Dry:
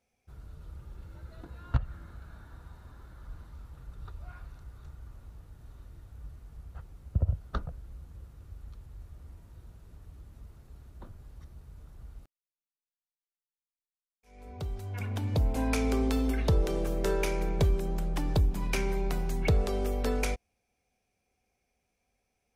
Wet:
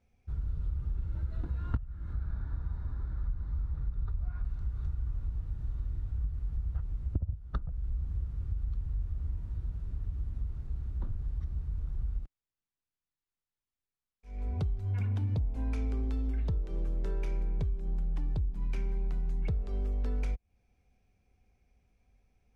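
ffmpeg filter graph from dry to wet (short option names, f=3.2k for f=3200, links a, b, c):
-filter_complex "[0:a]asettb=1/sr,asplit=3[a][b][c];[a]atrim=end=2.134[d];[b]atrim=start=2.13:end=4.45,asetpts=PTS-STARTPTS,afade=t=in:d=0.004:c=qsin,afade=t=out:st=2.316:d=0.004:c=qsin,lowpass=5.1k,equalizer=f=2.9k:t=o:w=0.48:g=-7.5[e];[c]atrim=start=4.446[f];[d][e]acrossfade=d=0.004:c1=hsin:c2=qsin[g];[g][f]acrossfade=d=0.004:c1=qsin:c2=hsin,aemphasis=mode=reproduction:type=bsi,acompressor=threshold=-30dB:ratio=16,equalizer=f=590:w=1.5:g=-3.5,volume=2dB"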